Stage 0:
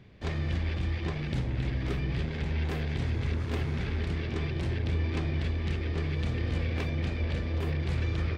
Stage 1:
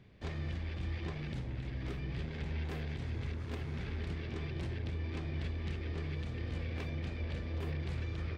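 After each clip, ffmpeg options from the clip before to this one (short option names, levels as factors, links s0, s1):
-af "alimiter=limit=0.0668:level=0:latency=1:release=457,volume=0.531"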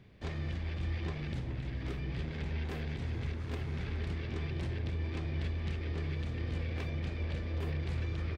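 -filter_complex "[0:a]asplit=2[s0][s1];[s1]adelay=419.8,volume=0.251,highshelf=f=4000:g=-9.45[s2];[s0][s2]amix=inputs=2:normalize=0,volume=1.19"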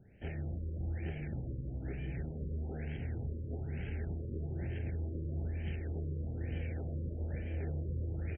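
-af "asuperstop=centerf=1100:order=4:qfactor=1.7,afftfilt=real='re*lt(b*sr/1024,560*pow(3300/560,0.5+0.5*sin(2*PI*1.1*pts/sr)))':imag='im*lt(b*sr/1024,560*pow(3300/560,0.5+0.5*sin(2*PI*1.1*pts/sr)))':win_size=1024:overlap=0.75,volume=0.794"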